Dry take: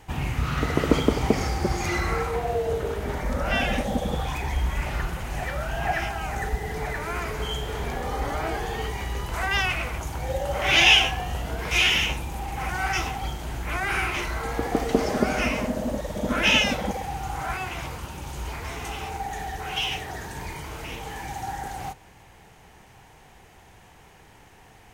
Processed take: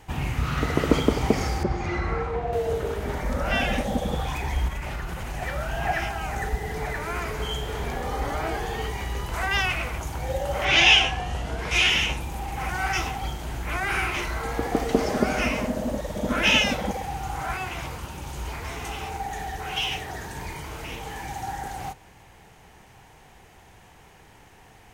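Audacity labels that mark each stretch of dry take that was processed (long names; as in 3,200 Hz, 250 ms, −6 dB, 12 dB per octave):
1.630000	2.530000	head-to-tape spacing loss at 10 kHz 22 dB
4.680000	5.420000	downward compressor, threshold −27 dBFS
10.640000	12.190000	low-pass filter 6,900 Hz → 12,000 Hz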